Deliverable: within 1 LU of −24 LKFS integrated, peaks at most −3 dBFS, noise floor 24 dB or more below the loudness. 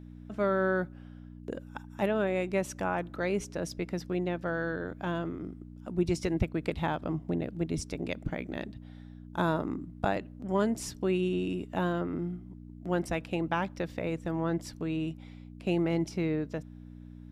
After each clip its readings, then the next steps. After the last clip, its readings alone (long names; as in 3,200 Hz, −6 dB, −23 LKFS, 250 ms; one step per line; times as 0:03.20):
mains hum 60 Hz; hum harmonics up to 300 Hz; level of the hum −46 dBFS; integrated loudness −32.5 LKFS; sample peak −14.5 dBFS; target loudness −24.0 LKFS
→ hum removal 60 Hz, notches 5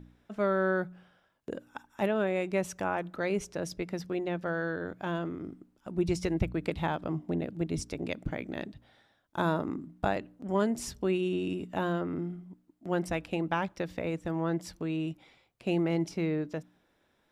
mains hum none found; integrated loudness −33.0 LKFS; sample peak −15.0 dBFS; target loudness −24.0 LKFS
→ level +9 dB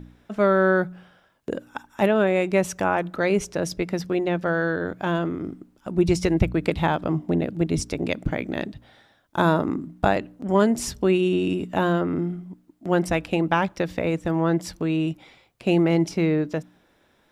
integrated loudness −24.0 LKFS; sample peak −6.0 dBFS; background noise floor −62 dBFS